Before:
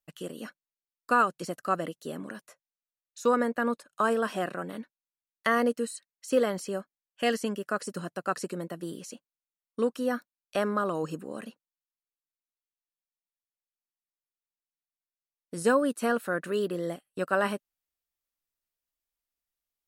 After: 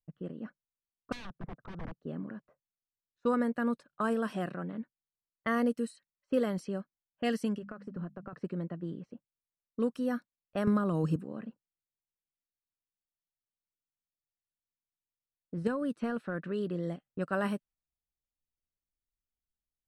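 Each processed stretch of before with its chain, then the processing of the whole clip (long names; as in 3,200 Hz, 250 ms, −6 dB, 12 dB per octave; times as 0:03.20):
0:01.12–0:01.99: low-pass filter 1,600 Hz 24 dB per octave + downward compressor 4 to 1, threshold −29 dBFS + wrap-around overflow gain 32 dB
0:07.58–0:08.33: mains-hum notches 50/100/150/200/250 Hz + downward compressor 16 to 1, threshold −33 dBFS
0:10.67–0:11.16: low-shelf EQ 230 Hz +6.5 dB + multiband upward and downward compressor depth 100%
0:15.67–0:16.83: high-shelf EQ 9,700 Hz −10 dB + downward compressor 4 to 1, threshold −25 dBFS
whole clip: low-pass that shuts in the quiet parts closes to 600 Hz, open at −25 dBFS; bass and treble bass +13 dB, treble −2 dB; notch filter 6,900 Hz, Q 11; level −7 dB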